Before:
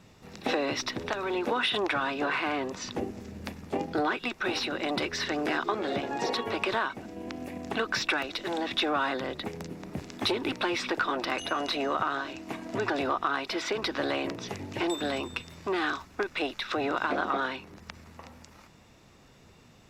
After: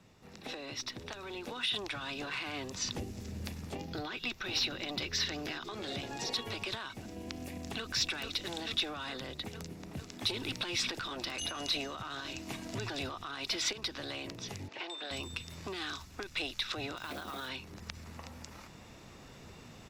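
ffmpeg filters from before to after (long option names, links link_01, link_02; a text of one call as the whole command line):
ffmpeg -i in.wav -filter_complex "[0:a]asettb=1/sr,asplit=3[link_01][link_02][link_03];[link_01]atrim=end=3.754[link_04];[link_02]atrim=start=3.75:end=5.65,asetpts=PTS-STARTPTS,afade=type=in:duration=0.004:curve=qsin,afade=type=out:start_time=1.896:duration=0.004:curve=qsin,equalizer=frequency=8900:width_type=o:width=0.43:gain=-13.5[link_05];[link_03]atrim=start=5.646[link_06];[link_04][link_05]acrossfade=duration=0.004:curve1=hsin:curve2=qsin[link_07];[link_07][link_06]acrossfade=duration=0.004:curve1=qsin:curve2=hsin,asplit=2[link_08][link_09];[link_09]afade=type=in:start_time=7.36:duration=0.01,afade=type=out:start_time=7.86:duration=0.01,aecho=0:1:440|880|1320|1760|2200|2640|3080|3520|3960|4400|4840|5280:0.421697|0.316272|0.237204|0.177903|0.133427|0.100071|0.0750529|0.0562897|0.0422173|0.0316629|0.0237472|0.0178104[link_10];[link_08][link_10]amix=inputs=2:normalize=0,asettb=1/sr,asplit=3[link_11][link_12][link_13];[link_11]atrim=end=14.684[link_14];[link_12]atrim=start=14.68:end=15.11,asetpts=PTS-STARTPTS,afade=type=in:duration=0.004:curve=qsin,afade=type=out:start_time=0.426:duration=0.004:curve=qsin,highpass=560,lowpass=3600[link_15];[link_13]atrim=start=15.106[link_16];[link_14][link_15]acrossfade=duration=0.004:curve1=hsin:curve2=qsin[link_17];[link_17][link_16]acrossfade=duration=0.004:curve1=qsin:curve2=hsin,asplit=3[link_18][link_19][link_20];[link_18]afade=type=out:start_time=16.96:duration=0.02[link_21];[link_19]acrusher=bits=7:mode=log:mix=0:aa=0.000001,afade=type=in:start_time=16.96:duration=0.02,afade=type=out:start_time=17.48:duration=0.02[link_22];[link_20]afade=type=in:start_time=17.48:duration=0.02[link_23];[link_21][link_22][link_23]amix=inputs=3:normalize=0,asplit=3[link_24][link_25][link_26];[link_24]atrim=end=10.302[link_27];[link_25]atrim=start=10.298:end=13.732,asetpts=PTS-STARTPTS,volume=8dB[link_28];[link_26]atrim=start=13.728[link_29];[link_27][link_28]acrossfade=duration=0.004:curve1=hsin:curve2=hsin[link_30];[link_30][link_29]acrossfade=duration=0.004:curve1=hsin:curve2=hsin,dynaudnorm=framelen=480:gausssize=7:maxgain=11dB,alimiter=limit=-11.5dB:level=0:latency=1:release=55,acrossover=split=140|3000[link_31][link_32][link_33];[link_32]acompressor=threshold=-43dB:ratio=2.5[link_34];[link_31][link_34][link_33]amix=inputs=3:normalize=0,volume=-6dB" out.wav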